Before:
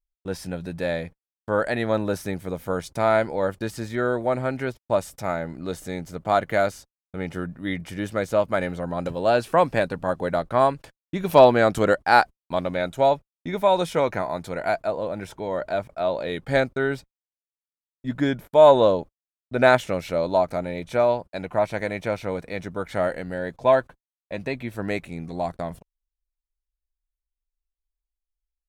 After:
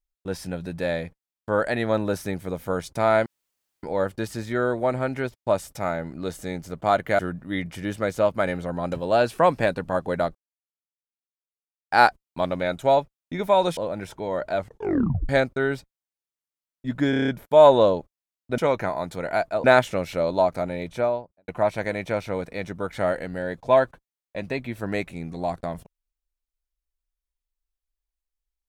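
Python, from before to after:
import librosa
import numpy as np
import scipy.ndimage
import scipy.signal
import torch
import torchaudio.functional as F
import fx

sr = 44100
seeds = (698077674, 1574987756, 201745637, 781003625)

y = fx.studio_fade_out(x, sr, start_s=20.78, length_s=0.66)
y = fx.edit(y, sr, fx.insert_room_tone(at_s=3.26, length_s=0.57),
    fx.cut(start_s=6.62, length_s=0.71),
    fx.silence(start_s=10.49, length_s=1.56),
    fx.move(start_s=13.91, length_s=1.06, to_s=19.6),
    fx.tape_stop(start_s=15.77, length_s=0.72),
    fx.stutter(start_s=18.3, slice_s=0.03, count=7), tone=tone)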